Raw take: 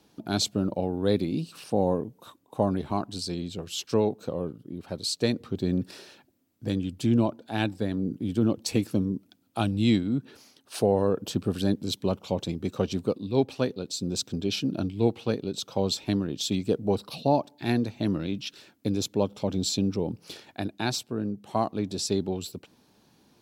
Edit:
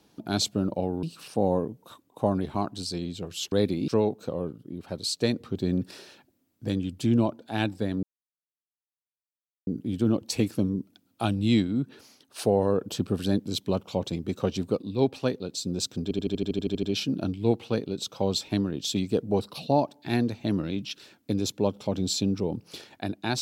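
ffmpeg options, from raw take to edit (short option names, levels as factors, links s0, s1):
-filter_complex "[0:a]asplit=15[s0][s1][s2][s3][s4][s5][s6][s7][s8][s9][s10][s11][s12][s13][s14];[s0]atrim=end=1.032[s15];[s1]atrim=start=1.388:end=3.882[s16];[s2]atrim=start=1.028:end=1.392[s17];[s3]atrim=start=3.878:end=8.03,asetpts=PTS-STARTPTS,afade=t=out:st=4.148:d=0.004:c=hsin,apad=pad_dur=1.64[s18];[s4]atrim=start=8.03:end=14.472,asetpts=PTS-STARTPTS,afade=t=in:d=0.004:c=hsin[s19];[s5]atrim=start=14.388:end=14.472[s20];[s6]atrim=start=14.388:end=14.472[s21];[s7]atrim=start=14.388:end=14.472[s22];[s8]atrim=start=14.388:end=14.472[s23];[s9]atrim=start=14.388:end=14.472[s24];[s10]atrim=start=14.388:end=14.472[s25];[s11]atrim=start=14.388:end=14.472[s26];[s12]atrim=start=14.388:end=14.472[s27];[s13]atrim=start=14.388:end=14.472[s28];[s14]atrim=start=14.388[s29];[s15][s16]acrossfade=d=0.004:c1=hsin:c2=hsin[s30];[s30][s17]acrossfade=d=0.004:c1=hsin:c2=hsin[s31];[s18][s19]concat=n=2:v=0:a=1[s32];[s31][s32]acrossfade=d=0.004:c1=hsin:c2=hsin[s33];[s33][s20]acrossfade=d=0.004:c1=hsin:c2=hsin[s34];[s34][s21]acrossfade=d=0.004:c1=hsin:c2=hsin[s35];[s35][s22]acrossfade=d=0.004:c1=hsin:c2=hsin[s36];[s36][s23]acrossfade=d=0.004:c1=hsin:c2=hsin[s37];[s37][s24]acrossfade=d=0.004:c1=hsin:c2=hsin[s38];[s38][s25]acrossfade=d=0.004:c1=hsin:c2=hsin[s39];[s39][s26]acrossfade=d=0.004:c1=hsin:c2=hsin[s40];[s40][s27]acrossfade=d=0.004:c1=hsin:c2=hsin[s41];[s41][s28]acrossfade=d=0.004:c1=hsin:c2=hsin[s42];[s42][s29]acrossfade=d=0.004:c1=hsin:c2=hsin"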